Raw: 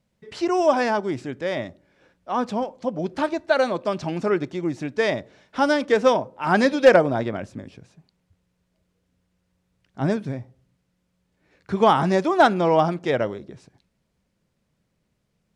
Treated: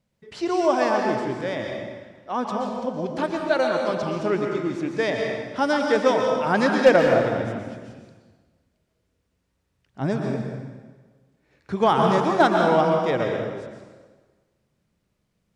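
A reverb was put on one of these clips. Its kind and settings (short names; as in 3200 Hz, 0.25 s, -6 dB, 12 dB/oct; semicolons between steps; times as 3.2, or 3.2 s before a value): plate-style reverb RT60 1.4 s, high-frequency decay 0.85×, pre-delay 0.105 s, DRR 1.5 dB; gain -2.5 dB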